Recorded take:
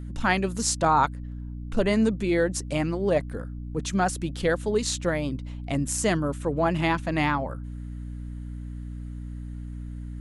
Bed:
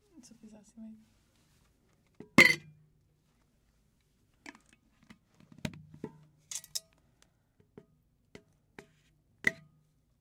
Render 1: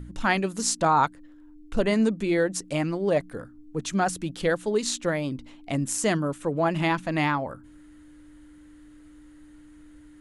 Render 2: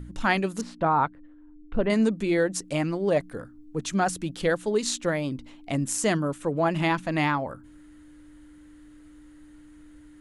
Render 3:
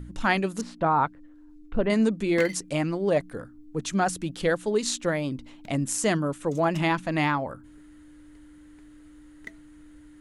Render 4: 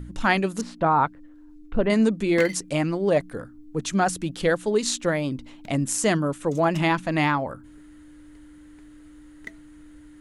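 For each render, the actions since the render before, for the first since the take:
de-hum 60 Hz, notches 4
0.61–1.9 air absorption 450 m
add bed -13.5 dB
gain +2.5 dB

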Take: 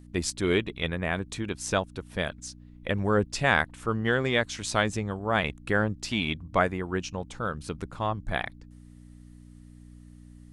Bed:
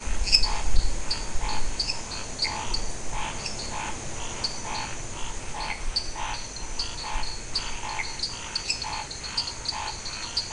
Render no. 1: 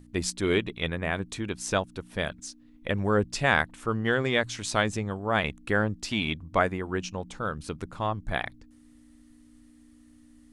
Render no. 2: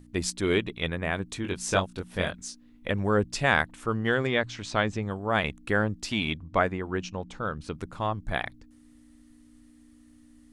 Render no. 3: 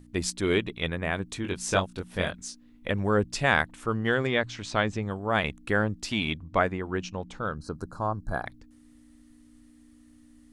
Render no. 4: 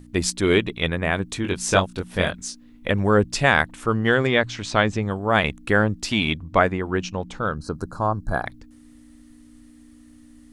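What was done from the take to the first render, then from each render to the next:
de-hum 60 Hz, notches 3
1.42–2.9 doubler 22 ms -3 dB; 4.27–5.03 air absorption 110 m; 6.37–7.74 air absorption 62 m
7.55–8.46 spectral gain 1700–3900 Hz -22 dB
gain +6.5 dB; limiter -3 dBFS, peak gain reduction 3 dB

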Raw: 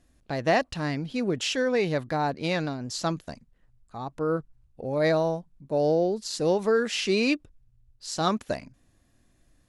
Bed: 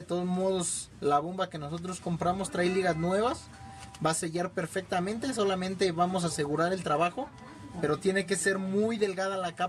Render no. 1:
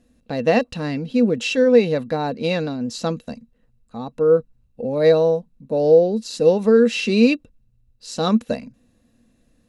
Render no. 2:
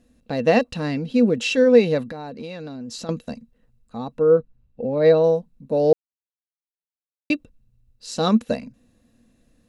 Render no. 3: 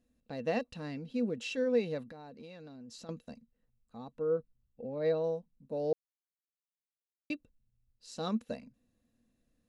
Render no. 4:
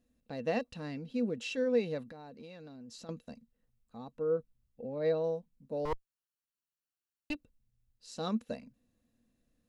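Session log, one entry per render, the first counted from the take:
small resonant body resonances 230/480/2700/3900 Hz, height 15 dB, ringing for 65 ms
2.05–3.09 compressor 8:1, threshold -30 dBFS; 4.18–5.24 air absorption 160 m; 5.93–7.3 mute
gain -15.5 dB
5.85–7.35 minimum comb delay 0.7 ms

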